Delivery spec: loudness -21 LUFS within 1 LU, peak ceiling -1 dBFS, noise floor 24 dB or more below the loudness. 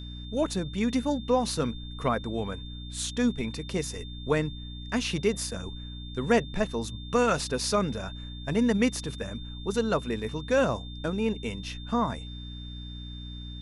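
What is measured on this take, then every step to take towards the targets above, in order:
hum 60 Hz; highest harmonic 300 Hz; hum level -38 dBFS; steady tone 3.6 kHz; tone level -45 dBFS; loudness -29.5 LUFS; peak level -10.5 dBFS; loudness target -21.0 LUFS
-> de-hum 60 Hz, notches 5; band-stop 3.6 kHz, Q 30; trim +8.5 dB

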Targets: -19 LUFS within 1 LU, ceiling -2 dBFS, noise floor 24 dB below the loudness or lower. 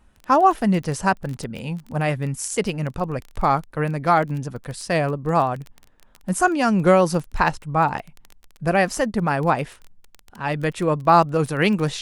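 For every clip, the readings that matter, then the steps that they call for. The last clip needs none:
tick rate 18 per s; loudness -21.5 LUFS; peak level -3.0 dBFS; loudness target -19.0 LUFS
-> de-click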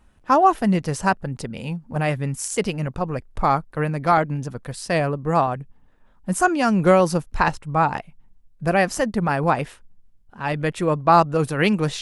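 tick rate 0 per s; loudness -21.5 LUFS; peak level -3.0 dBFS; loudness target -19.0 LUFS
-> trim +2.5 dB; peak limiter -2 dBFS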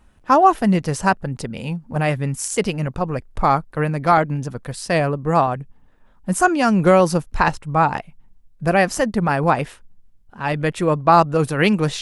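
loudness -19.0 LUFS; peak level -2.0 dBFS; noise floor -52 dBFS

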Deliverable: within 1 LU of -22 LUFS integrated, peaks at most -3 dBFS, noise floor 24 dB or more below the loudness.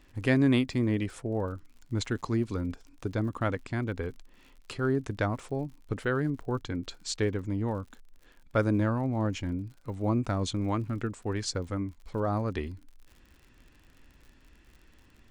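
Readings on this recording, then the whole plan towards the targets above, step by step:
tick rate 60 per s; loudness -31.0 LUFS; peak level -13.0 dBFS; loudness target -22.0 LUFS
-> de-click; trim +9 dB

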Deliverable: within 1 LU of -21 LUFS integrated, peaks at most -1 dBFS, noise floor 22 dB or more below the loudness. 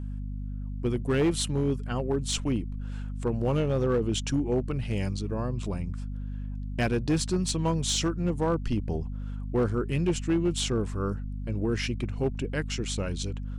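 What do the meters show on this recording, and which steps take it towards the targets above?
clipped samples 1.0%; clipping level -19.0 dBFS; hum 50 Hz; highest harmonic 250 Hz; hum level -32 dBFS; loudness -29.5 LUFS; peak level -19.0 dBFS; loudness target -21.0 LUFS
-> clip repair -19 dBFS; de-hum 50 Hz, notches 5; trim +8.5 dB

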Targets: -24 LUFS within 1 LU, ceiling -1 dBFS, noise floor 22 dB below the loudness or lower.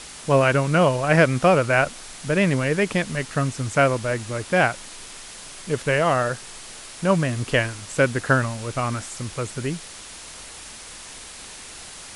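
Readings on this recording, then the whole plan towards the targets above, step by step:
noise floor -40 dBFS; noise floor target -44 dBFS; loudness -21.5 LUFS; peak level -4.0 dBFS; loudness target -24.0 LUFS
-> noise print and reduce 6 dB; trim -2.5 dB

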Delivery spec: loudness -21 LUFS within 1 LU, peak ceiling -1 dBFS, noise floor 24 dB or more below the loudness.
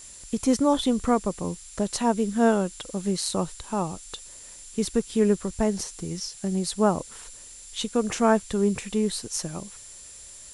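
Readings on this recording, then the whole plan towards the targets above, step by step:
steady tone 7.3 kHz; tone level -46 dBFS; noise floor -45 dBFS; noise floor target -50 dBFS; loudness -26.0 LUFS; peak level -7.5 dBFS; loudness target -21.0 LUFS
-> band-stop 7.3 kHz, Q 30; noise reduction 6 dB, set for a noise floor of -45 dBFS; trim +5 dB

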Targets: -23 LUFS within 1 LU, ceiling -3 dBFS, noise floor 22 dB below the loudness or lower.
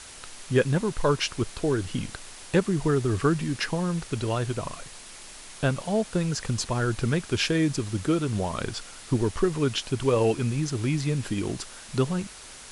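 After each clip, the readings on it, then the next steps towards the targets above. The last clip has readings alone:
noise floor -45 dBFS; noise floor target -49 dBFS; loudness -27.0 LUFS; peak level -9.0 dBFS; loudness target -23.0 LUFS
-> noise print and reduce 6 dB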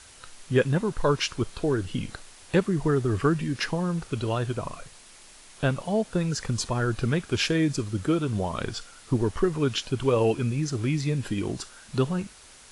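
noise floor -50 dBFS; loudness -27.0 LUFS; peak level -9.0 dBFS; loudness target -23.0 LUFS
-> trim +4 dB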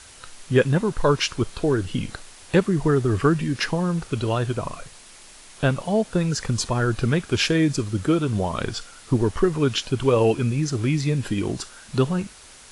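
loudness -23.0 LUFS; peak level -5.0 dBFS; noise floor -46 dBFS

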